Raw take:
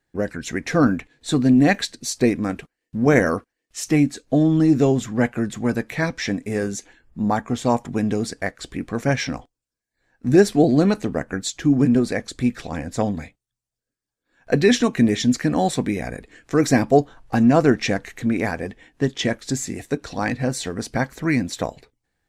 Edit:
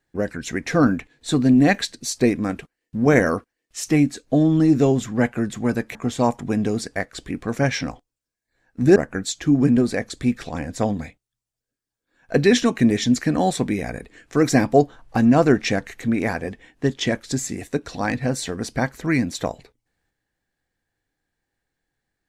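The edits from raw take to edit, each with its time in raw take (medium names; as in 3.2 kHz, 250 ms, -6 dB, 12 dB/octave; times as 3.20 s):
5.95–7.41 s: delete
10.42–11.14 s: delete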